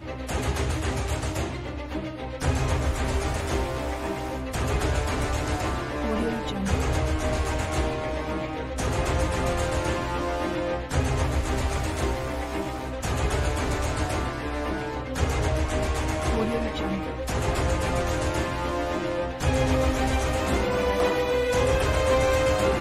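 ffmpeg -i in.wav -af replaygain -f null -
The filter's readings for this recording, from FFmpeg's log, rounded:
track_gain = +8.5 dB
track_peak = 0.244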